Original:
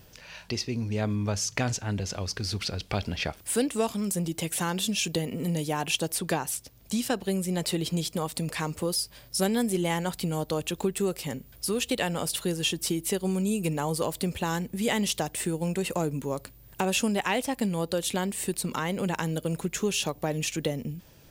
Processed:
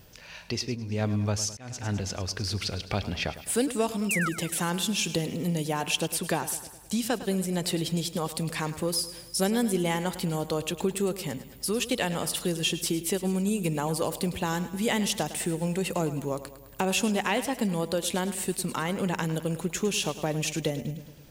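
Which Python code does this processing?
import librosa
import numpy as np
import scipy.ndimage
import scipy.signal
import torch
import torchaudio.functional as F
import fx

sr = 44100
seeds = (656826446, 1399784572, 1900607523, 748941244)

y = fx.spec_paint(x, sr, seeds[0], shape='fall', start_s=4.09, length_s=0.2, low_hz=1200.0, high_hz=2900.0, level_db=-29.0)
y = fx.echo_feedback(y, sr, ms=105, feedback_pct=57, wet_db=-14)
y = fx.auto_swell(y, sr, attack_ms=409.0, at=(0.74, 1.79), fade=0.02)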